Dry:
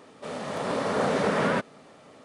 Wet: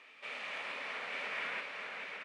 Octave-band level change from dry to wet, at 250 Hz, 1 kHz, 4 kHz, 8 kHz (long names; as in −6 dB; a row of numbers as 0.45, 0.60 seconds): −29.0, −15.0, −5.5, −17.0 decibels